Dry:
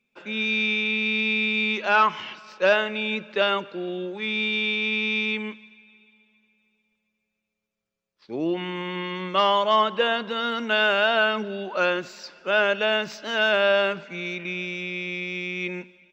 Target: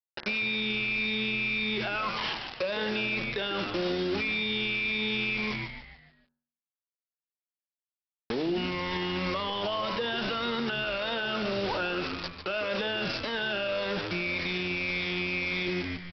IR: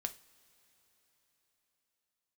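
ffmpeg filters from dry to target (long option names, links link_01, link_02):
-filter_complex "[0:a]afftfilt=real='re*pow(10,9/40*sin(2*PI*(1*log(max(b,1)*sr/1024/100)/log(2)-(-1.8)*(pts-256)/sr)))':imag='im*pow(10,9/40*sin(2*PI*(1*log(max(b,1)*sr/1024/100)/log(2)-(-1.8)*(pts-256)/sr)))':win_size=1024:overlap=0.75,acrossover=split=360|3000[link_01][link_02][link_03];[link_02]acompressor=threshold=-25dB:ratio=10[link_04];[link_01][link_04][link_03]amix=inputs=3:normalize=0,aresample=11025,acrusher=bits=5:mix=0:aa=0.000001,aresample=44100,bandreject=frequency=73.44:width_type=h:width=4,bandreject=frequency=146.88:width_type=h:width=4,bandreject=frequency=220.32:width_type=h:width=4,bandreject=frequency=293.76:width_type=h:width=4,bandreject=frequency=367.2:width_type=h:width=4,bandreject=frequency=440.64:width_type=h:width=4,bandreject=frequency=514.08:width_type=h:width=4,bandreject=frequency=587.52:width_type=h:width=4,bandreject=frequency=660.96:width_type=h:width=4,bandreject=frequency=734.4:width_type=h:width=4,bandreject=frequency=807.84:width_type=h:width=4,bandreject=frequency=881.28:width_type=h:width=4,bandreject=frequency=954.72:width_type=h:width=4,bandreject=frequency=1028.16:width_type=h:width=4,bandreject=frequency=1101.6:width_type=h:width=4,bandreject=frequency=1175.04:width_type=h:width=4,bandreject=frequency=1248.48:width_type=h:width=4,bandreject=frequency=1321.92:width_type=h:width=4,bandreject=frequency=1395.36:width_type=h:width=4,bandreject=frequency=1468.8:width_type=h:width=4,bandreject=frequency=1542.24:width_type=h:width=4,bandreject=frequency=1615.68:width_type=h:width=4,bandreject=frequency=1689.12:width_type=h:width=4,bandreject=frequency=1762.56:width_type=h:width=4,bandreject=frequency=1836:width_type=h:width=4,bandreject=frequency=1909.44:width_type=h:width=4,bandreject=frequency=1982.88:width_type=h:width=4,bandreject=frequency=2056.32:width_type=h:width=4,bandreject=frequency=2129.76:width_type=h:width=4,acompressor=threshold=-27dB:ratio=12,asplit=6[link_05][link_06][link_07][link_08][link_09][link_10];[link_06]adelay=146,afreqshift=-92,volume=-10.5dB[link_11];[link_07]adelay=292,afreqshift=-184,volume=-17.6dB[link_12];[link_08]adelay=438,afreqshift=-276,volume=-24.8dB[link_13];[link_09]adelay=584,afreqshift=-368,volume=-31.9dB[link_14];[link_10]adelay=730,afreqshift=-460,volume=-39dB[link_15];[link_05][link_11][link_12][link_13][link_14][link_15]amix=inputs=6:normalize=0,alimiter=level_in=5.5dB:limit=-24dB:level=0:latency=1:release=26,volume=-5.5dB,volume=7dB"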